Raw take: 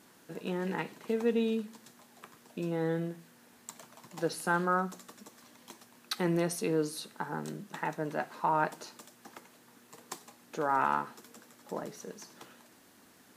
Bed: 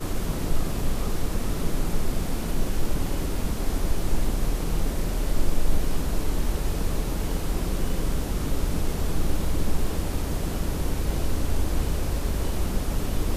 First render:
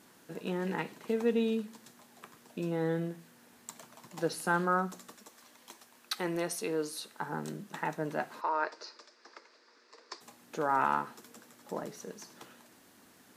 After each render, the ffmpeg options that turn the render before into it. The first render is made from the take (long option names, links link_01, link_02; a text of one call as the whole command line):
ffmpeg -i in.wav -filter_complex "[0:a]asettb=1/sr,asplit=3[link_01][link_02][link_03];[link_01]atrim=end=5.154[link_04];[link_02]atrim=start=5.15:end=7.22,asetpts=PTS-STARTPTS,afade=type=in:duration=0.004:curve=qsin,afade=type=out:start_time=2.066:duration=0.004:curve=qsin,equalizer=frequency=140:width_type=o:width=2.2:gain=-10[link_05];[link_03]atrim=start=7.216[link_06];[link_04][link_05]acrossfade=duration=0.004:curve1=hsin:curve2=qsin[link_07];[link_07][link_06]acrossfade=duration=0.004:curve1=qsin:curve2=hsin,asplit=3[link_08][link_09][link_10];[link_08]afade=type=out:start_time=8.4:duration=0.02[link_11];[link_09]highpass=frequency=380:width=0.5412,highpass=frequency=380:width=1.3066,equalizer=frequency=770:width_type=q:width=4:gain=-10,equalizer=frequency=3100:width_type=q:width=4:gain=-9,equalizer=frequency=4900:width_type=q:width=4:gain=9,lowpass=frequency=5300:width=0.5412,lowpass=frequency=5300:width=1.3066,afade=type=in:start_time=8.4:duration=0.02,afade=type=out:start_time=10.2:duration=0.02[link_12];[link_10]afade=type=in:start_time=10.2:duration=0.02[link_13];[link_11][link_12][link_13]amix=inputs=3:normalize=0" out.wav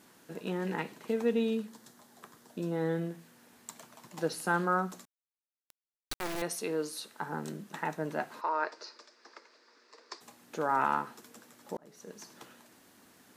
ffmpeg -i in.wav -filter_complex "[0:a]asettb=1/sr,asplit=3[link_01][link_02][link_03];[link_01]atrim=end=1.694[link_04];[link_02]atrim=start=1.69:end=2.76,asetpts=PTS-STARTPTS,afade=type=in:duration=0.004:curve=qsin,afade=type=out:start_time=1.066:duration=0.004:curve=qsin,equalizer=frequency=2500:width=3:gain=-7[link_05];[link_03]atrim=start=2.756[link_06];[link_04][link_05]acrossfade=duration=0.004:curve1=hsin:curve2=qsin[link_07];[link_07][link_06]acrossfade=duration=0.004:curve1=qsin:curve2=hsin,asettb=1/sr,asplit=3[link_08][link_09][link_10];[link_08]atrim=end=5.054[link_11];[link_09]atrim=start=5.05:end=6.42,asetpts=PTS-STARTPTS,afade=type=in:duration=0.004:curve=qsin,afade=type=out:start_time=1.366:duration=0.004:curve=qsin,acrusher=bits=3:dc=4:mix=0:aa=0.000001[link_12];[link_10]atrim=start=6.416[link_13];[link_11][link_12]acrossfade=duration=0.004:curve1=hsin:curve2=qsin[link_14];[link_14][link_13]acrossfade=duration=0.004:curve1=qsin:curve2=hsin,asplit=2[link_15][link_16];[link_15]atrim=end=11.77,asetpts=PTS-STARTPTS,afade=type=out:start_time=11.766:duration=0.004:curve=hsin[link_17];[link_16]atrim=start=11.77,asetpts=PTS-STARTPTS,afade=type=in:duration=0.46[link_18];[link_17][link_18]concat=n=2:v=0:a=1" out.wav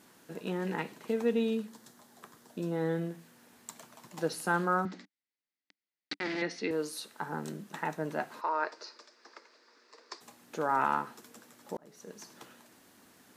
ffmpeg -i in.wav -filter_complex "[0:a]asettb=1/sr,asplit=3[link_01][link_02][link_03];[link_01]atrim=end=4.854[link_04];[link_02]atrim=start=4.85:end=6.71,asetpts=PTS-STARTPTS,afade=type=in:duration=0.004:curve=qsin,afade=type=out:start_time=1.856:duration=0.004:curve=qsin,highpass=180,equalizer=frequency=200:width_type=q:width=4:gain=7,equalizer=frequency=290:width_type=q:width=4:gain=9,equalizer=frequency=650:width_type=q:width=4:gain=-5,equalizer=frequency=1100:width_type=q:width=4:gain=-8,equalizer=frequency=2000:width_type=q:width=4:gain=10,equalizer=frequency=4700:width_type=q:width=4:gain=5,lowpass=frequency=4900:width=0.5412,lowpass=frequency=4900:width=1.3066[link_05];[link_03]atrim=start=6.706[link_06];[link_04][link_05]acrossfade=duration=0.004:curve1=hsin:curve2=qsin[link_07];[link_07][link_06]acrossfade=duration=0.004:curve1=qsin:curve2=hsin" out.wav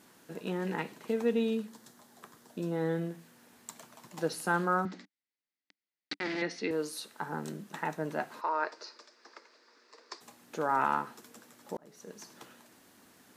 ffmpeg -i in.wav -af anull out.wav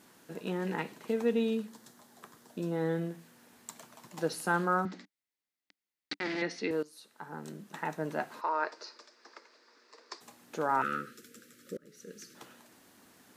ffmpeg -i in.wav -filter_complex "[0:a]asettb=1/sr,asplit=3[link_01][link_02][link_03];[link_01]atrim=end=10.824[link_04];[link_02]atrim=start=10.82:end=12.35,asetpts=PTS-STARTPTS,afade=type=in:duration=0.004:curve=qsin,afade=type=out:start_time=1.526:duration=0.004:curve=qsin,asuperstop=centerf=830:order=12:qfactor=1.2[link_05];[link_03]atrim=start=12.346[link_06];[link_04][link_05]acrossfade=duration=0.004:curve1=hsin:curve2=qsin[link_07];[link_07][link_06]acrossfade=duration=0.004:curve1=qsin:curve2=hsin,asplit=2[link_08][link_09];[link_08]atrim=end=6.83,asetpts=PTS-STARTPTS,afade=type=out:start_time=6.826:duration=0.004:curve=hsin:silence=0.133352[link_10];[link_09]atrim=start=6.83,asetpts=PTS-STARTPTS,afade=type=in:duration=1.21:silence=0.133352[link_11];[link_10][link_11]concat=n=2:v=0:a=1" out.wav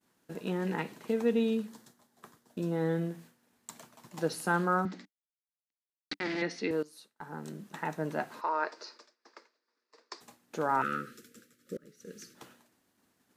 ffmpeg -i in.wav -af "agate=range=-33dB:threshold=-50dB:ratio=3:detection=peak,lowshelf=frequency=170:gain=5" out.wav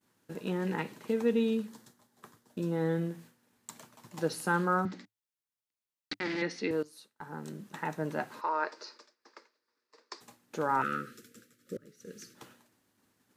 ffmpeg -i in.wav -af "equalizer=frequency=110:width=6.9:gain=8.5,bandreject=frequency=690:width=12" out.wav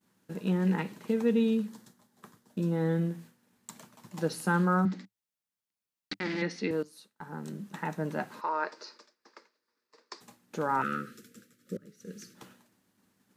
ffmpeg -i in.wav -af "equalizer=frequency=190:width=3.6:gain=8.5" out.wav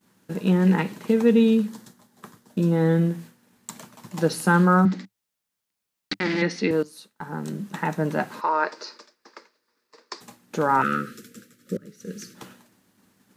ffmpeg -i in.wav -af "volume=8.5dB" out.wav